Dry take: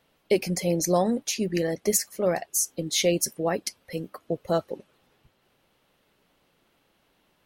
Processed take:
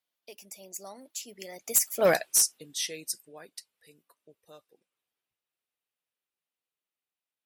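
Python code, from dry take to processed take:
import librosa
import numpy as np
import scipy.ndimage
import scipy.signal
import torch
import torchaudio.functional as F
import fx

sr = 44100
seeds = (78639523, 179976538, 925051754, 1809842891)

y = fx.doppler_pass(x, sr, speed_mps=33, closest_m=1.9, pass_at_s=2.09)
y = fx.tilt_eq(y, sr, slope=3.5)
y = fx.clip_asym(y, sr, top_db=-23.0, bottom_db=-19.5)
y = F.gain(torch.from_numpy(y), 7.0).numpy()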